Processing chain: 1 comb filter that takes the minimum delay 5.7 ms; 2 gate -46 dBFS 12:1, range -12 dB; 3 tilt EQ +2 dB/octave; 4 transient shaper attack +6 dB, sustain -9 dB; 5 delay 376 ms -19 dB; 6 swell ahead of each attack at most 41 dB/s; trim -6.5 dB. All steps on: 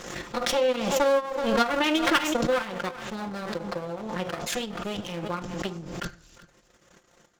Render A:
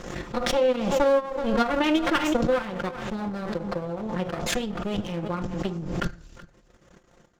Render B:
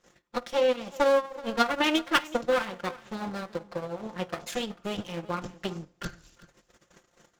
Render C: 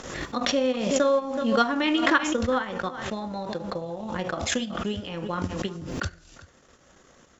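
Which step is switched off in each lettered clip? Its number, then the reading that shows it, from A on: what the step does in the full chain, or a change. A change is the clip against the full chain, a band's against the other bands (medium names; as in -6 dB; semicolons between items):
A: 3, 125 Hz band +6.0 dB; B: 6, crest factor change +2.0 dB; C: 1, 250 Hz band +2.5 dB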